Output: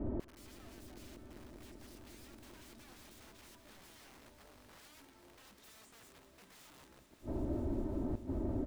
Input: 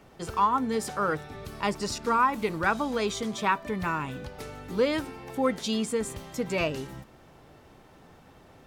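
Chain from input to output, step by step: level-controlled noise filter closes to 300 Hz, open at -23.5 dBFS; comb 3.2 ms, depth 87%; compression 3:1, threshold -33 dBFS, peak gain reduction 13.5 dB; integer overflow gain 35 dB; inverted gate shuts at -44 dBFS, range -38 dB; on a send: echo with a slow build-up 195 ms, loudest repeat 5, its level -16 dB; on the sum: trim +18 dB

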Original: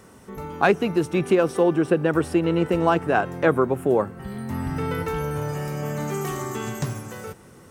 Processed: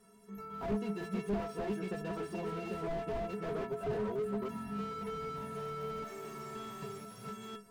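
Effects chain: chunks repeated in reverse 504 ms, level -1 dB; inharmonic resonator 200 Hz, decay 0.39 s, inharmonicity 0.03; slew-rate limiter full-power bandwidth 9.4 Hz; trim +1 dB

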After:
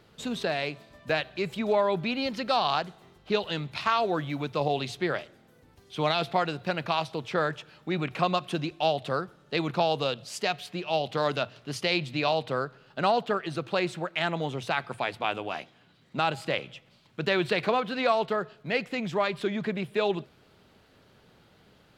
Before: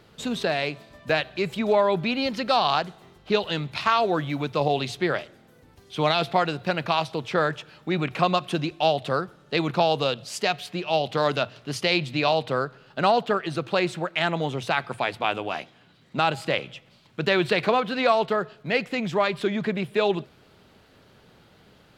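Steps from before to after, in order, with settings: 9.99–11.04 s: short-mantissa float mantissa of 8-bit; trim -4 dB

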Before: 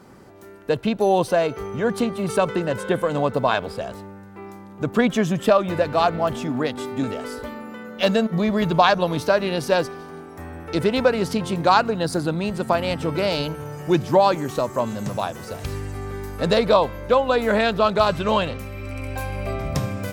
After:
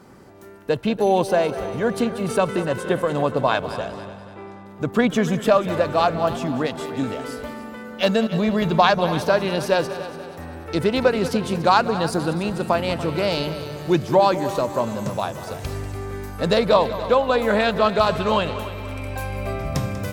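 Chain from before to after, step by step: 3.32–4.66 s: level-controlled noise filter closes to 2.7 kHz, open at -21 dBFS; multi-head delay 96 ms, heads second and third, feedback 49%, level -14.5 dB

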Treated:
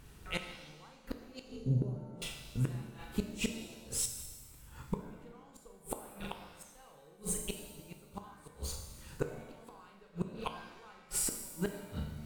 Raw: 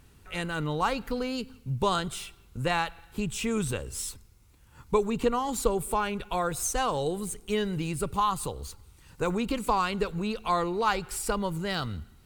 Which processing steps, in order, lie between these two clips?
1.43–2.22 s: FFT filter 140 Hz 0 dB, 460 Hz +13 dB, 2.6 kHz -29 dB; flutter echo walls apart 6.9 m, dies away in 0.4 s; inverted gate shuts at -21 dBFS, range -33 dB; pitch-shifted reverb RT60 1.3 s, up +7 st, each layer -8 dB, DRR 5.5 dB

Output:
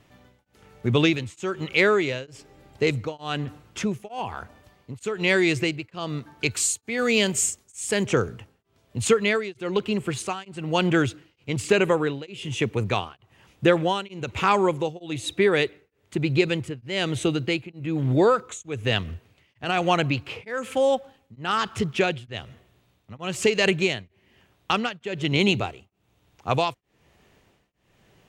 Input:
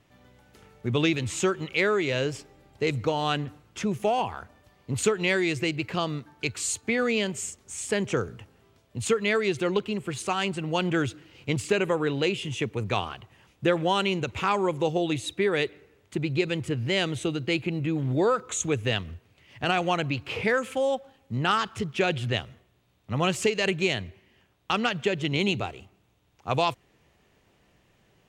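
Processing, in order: 6.51–8.04 s: treble shelf 5.3 kHz +10.5 dB; tremolo of two beating tones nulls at 1.1 Hz; trim +5 dB

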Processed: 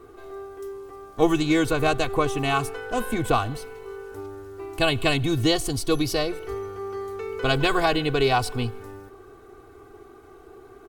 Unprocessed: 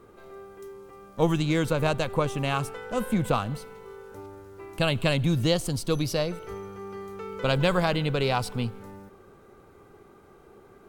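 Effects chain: comb 2.7 ms, depth 85%; trim +2 dB

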